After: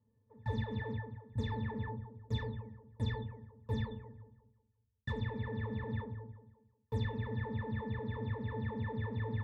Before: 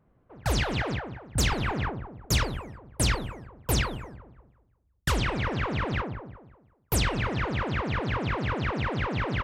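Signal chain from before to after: octave resonator A, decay 0.13 s; de-hum 57.43 Hz, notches 2

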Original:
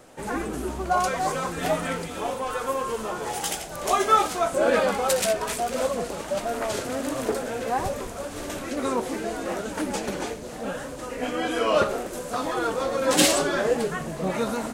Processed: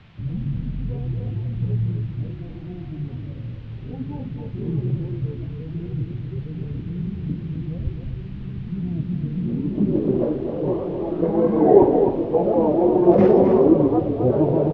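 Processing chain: low-pass sweep 190 Hz -> 850 Hz, 9.19–10.31; pitch shift -7 st; band noise 310–3300 Hz -63 dBFS; on a send: echo 0.261 s -6.5 dB; on the sum: gain +5.5 dB

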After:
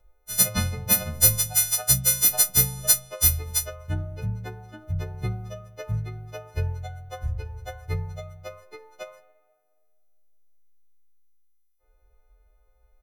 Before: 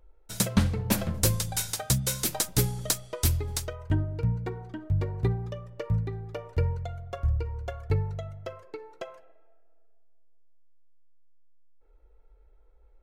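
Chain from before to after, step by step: frequency quantiser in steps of 3 st; comb 1.5 ms, depth 43%; gain -2.5 dB

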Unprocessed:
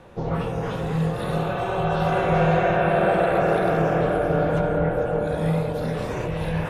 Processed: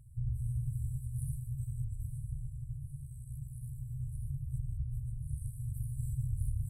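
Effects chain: compressor, threshold -22 dBFS, peak gain reduction 7 dB; FFT band-reject 140–7600 Hz

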